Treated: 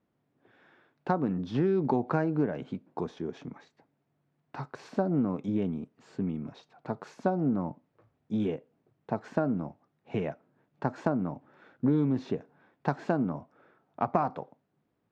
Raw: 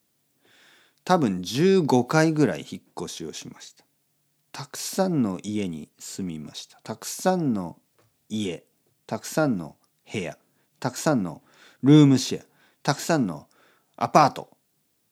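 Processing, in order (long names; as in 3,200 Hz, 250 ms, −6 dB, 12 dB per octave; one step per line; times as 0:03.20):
low-pass filter 1,400 Hz 12 dB per octave
downward compressor 6 to 1, threshold −23 dBFS, peak gain reduction 13 dB
highs frequency-modulated by the lows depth 0.12 ms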